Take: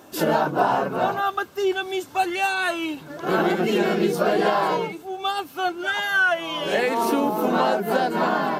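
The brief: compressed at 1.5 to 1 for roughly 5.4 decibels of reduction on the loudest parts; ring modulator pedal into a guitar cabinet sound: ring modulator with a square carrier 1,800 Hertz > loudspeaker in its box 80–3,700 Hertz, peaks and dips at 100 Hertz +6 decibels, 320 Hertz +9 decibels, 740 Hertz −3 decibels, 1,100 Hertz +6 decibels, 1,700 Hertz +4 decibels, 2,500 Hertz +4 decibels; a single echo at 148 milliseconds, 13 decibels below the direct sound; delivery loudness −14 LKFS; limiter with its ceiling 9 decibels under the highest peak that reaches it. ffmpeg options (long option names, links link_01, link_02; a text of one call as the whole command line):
ffmpeg -i in.wav -af "acompressor=threshold=-31dB:ratio=1.5,alimiter=limit=-22dB:level=0:latency=1,aecho=1:1:148:0.224,aeval=exprs='val(0)*sgn(sin(2*PI*1800*n/s))':channel_layout=same,highpass=80,equalizer=frequency=100:width_type=q:width=4:gain=6,equalizer=frequency=320:width_type=q:width=4:gain=9,equalizer=frequency=740:width_type=q:width=4:gain=-3,equalizer=frequency=1100:width_type=q:width=4:gain=6,equalizer=frequency=1700:width_type=q:width=4:gain=4,equalizer=frequency=2500:width_type=q:width=4:gain=4,lowpass=frequency=3700:width=0.5412,lowpass=frequency=3700:width=1.3066,volume=13dB" out.wav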